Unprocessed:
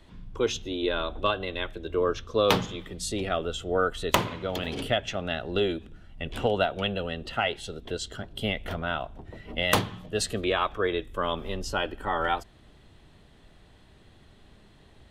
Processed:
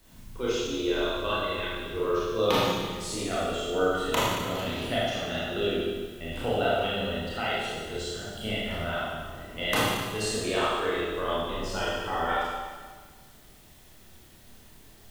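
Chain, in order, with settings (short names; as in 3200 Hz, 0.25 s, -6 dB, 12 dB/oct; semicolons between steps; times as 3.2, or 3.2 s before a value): added noise white -58 dBFS; Schroeder reverb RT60 1.5 s, combs from 25 ms, DRR -8 dB; gain -8.5 dB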